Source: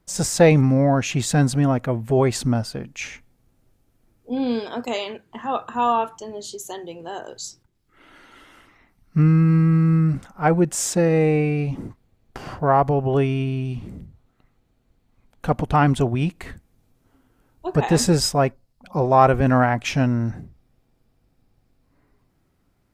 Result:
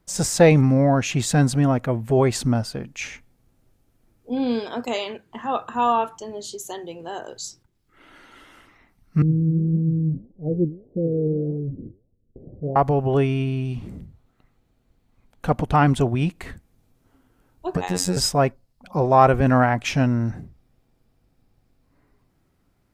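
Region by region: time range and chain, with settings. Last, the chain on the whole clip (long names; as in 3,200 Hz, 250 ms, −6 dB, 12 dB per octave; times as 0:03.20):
0:09.22–0:12.76: Butterworth low-pass 530 Hz 48 dB per octave + flanger 1.7 Hz, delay 3.9 ms, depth 9.8 ms, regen +82%
0:17.77–0:18.17: high-shelf EQ 4,700 Hz +7 dB + downward compressor 2 to 1, threshold −21 dBFS + phases set to zero 90.7 Hz
whole clip: no processing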